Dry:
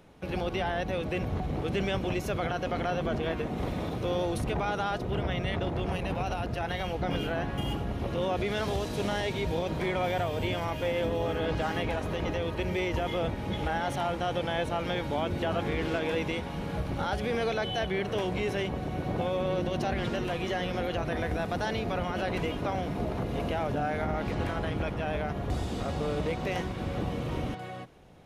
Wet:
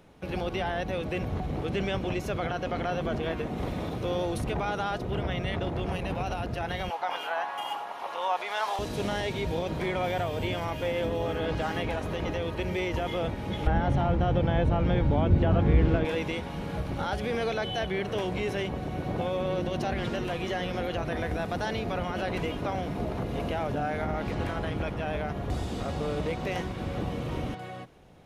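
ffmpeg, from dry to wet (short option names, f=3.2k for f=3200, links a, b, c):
-filter_complex "[0:a]asettb=1/sr,asplit=3[a][b][c];[a]atrim=end=1.654[d];[b]atrim=start=1.65:end=2.91,asetpts=PTS-STARTPTS,afade=t=in:d=0.004:c=qsin,afade=t=out:st=1.256:d=0.004:c=qsin,highshelf=f=8.8k:g=-5.5[e];[c]atrim=start=2.906[f];[d][e]acrossfade=d=0.004:c1=hsin:c2=qsin[g];[g][f]acrossfade=d=0.004:c1=qsin:c2=hsin,asettb=1/sr,asplit=3[h][i][j];[h]atrim=end=6.904[k];[i]atrim=start=6.9:end=8.79,asetpts=PTS-STARTPTS,afade=t=in:d=0.004:c=qsin,afade=t=out:st=1.886:d=0.004:c=qsin,highpass=f=900:t=q:w=3.4[l];[j]atrim=start=8.786[m];[k][l]acrossfade=d=0.004:c1=hsin:c2=qsin[n];[n][m]acrossfade=d=0.004:c1=qsin:c2=hsin,asettb=1/sr,asplit=3[o][p][q];[o]atrim=end=13.674[r];[p]atrim=start=13.67:end=16.05,asetpts=PTS-STARTPTS,afade=t=in:d=0.004:c=qsin,afade=t=out:st=2.376:d=0.004:c=qsin,aemphasis=mode=reproduction:type=riaa[s];[q]atrim=start=16.046[t];[r][s]acrossfade=d=0.004:c1=hsin:c2=qsin[u];[u][t]acrossfade=d=0.004:c1=qsin:c2=hsin"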